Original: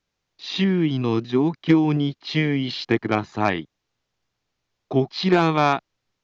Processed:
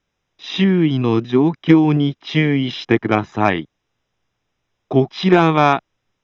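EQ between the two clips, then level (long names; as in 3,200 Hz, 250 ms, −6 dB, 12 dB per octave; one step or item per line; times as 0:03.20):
Butterworth band-reject 4,400 Hz, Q 5
high-frequency loss of the air 67 metres
+5.5 dB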